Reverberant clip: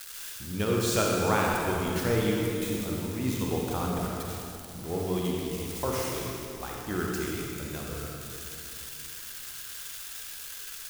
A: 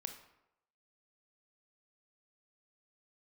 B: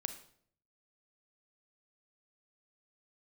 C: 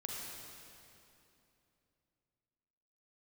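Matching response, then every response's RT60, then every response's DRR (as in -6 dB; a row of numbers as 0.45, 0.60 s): C; 0.85, 0.60, 2.9 s; 6.0, 8.5, -2.5 dB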